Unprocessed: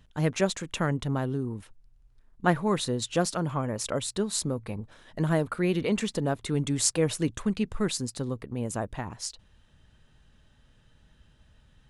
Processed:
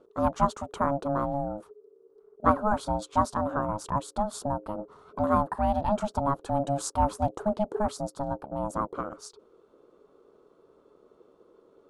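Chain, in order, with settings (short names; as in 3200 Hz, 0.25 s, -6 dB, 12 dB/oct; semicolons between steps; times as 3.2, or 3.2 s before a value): ring modulator 420 Hz; resonant high shelf 1600 Hz -9 dB, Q 3; gain +2 dB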